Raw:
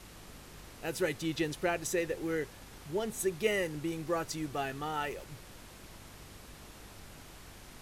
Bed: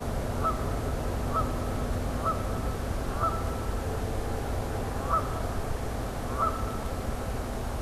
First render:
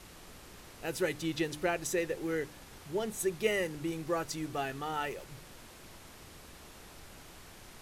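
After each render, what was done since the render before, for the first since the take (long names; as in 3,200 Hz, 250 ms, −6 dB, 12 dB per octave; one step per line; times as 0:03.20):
hum removal 50 Hz, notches 6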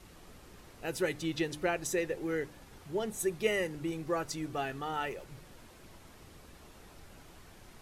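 broadband denoise 6 dB, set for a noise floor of −53 dBFS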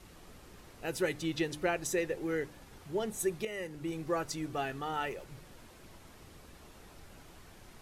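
0:03.45–0:04.00: fade in linear, from −13 dB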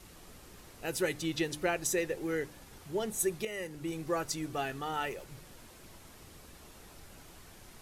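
high-shelf EQ 4,800 Hz +6.5 dB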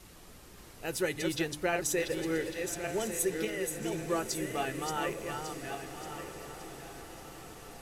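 feedback delay that plays each chunk backwards 575 ms, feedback 49%, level −5.5 dB
feedback delay with all-pass diffusion 1,218 ms, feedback 55%, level −12 dB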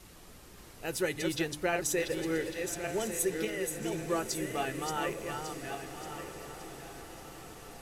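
no processing that can be heard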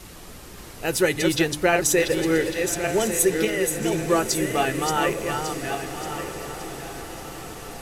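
level +11 dB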